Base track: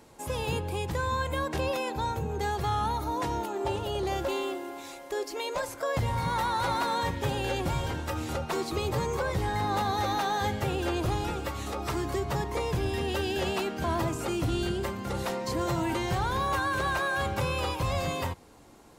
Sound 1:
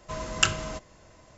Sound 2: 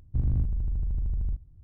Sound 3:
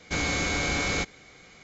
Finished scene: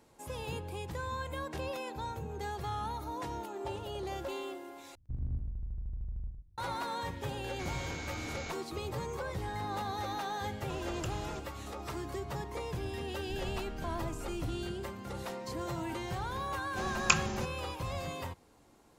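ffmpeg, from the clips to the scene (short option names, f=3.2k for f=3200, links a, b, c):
-filter_complex "[2:a]asplit=2[a][b];[1:a]asplit=2[c][d];[0:a]volume=-8.5dB[e];[a]aecho=1:1:107:0.501[f];[c]acompressor=threshold=-37dB:ratio=6:attack=3.2:release=140:knee=1:detection=peak[g];[d]afreqshift=-260[h];[e]asplit=2[i][j];[i]atrim=end=4.954[k];[f]atrim=end=1.63,asetpts=PTS-STARTPTS,volume=-12dB[l];[j]atrim=start=6.576[m];[3:a]atrim=end=1.63,asetpts=PTS-STARTPTS,volume=-15.5dB,afade=t=in:d=0.004:c=hsin,afade=t=out:st=1.626:d=0.004:c=hsin,adelay=7480[n];[g]atrim=end=1.37,asetpts=PTS-STARTPTS,volume=-3.5dB,afade=t=in:d=0.004:c=hsin,afade=t=out:st=1.366:d=0.004:c=hsin,adelay=10610[o];[b]atrim=end=1.63,asetpts=PTS-STARTPTS,volume=-16dB,afade=t=in:d=0.004:c=hsin,afade=t=out:st=1.626:d=0.004:c=hsin,adelay=13150[p];[h]atrim=end=1.37,asetpts=PTS-STARTPTS,volume=-3.5dB,afade=t=in:d=0.004:c=hsin,afade=t=out:st=1.366:d=0.004:c=hsin,adelay=16670[q];[k][l]acrossfade=d=0.004:c1=hsin:c2=hsin[r];[r][m]acrossfade=d=0.004:c1=hsin:c2=hsin[s];[s][n][o][p][q]amix=inputs=5:normalize=0"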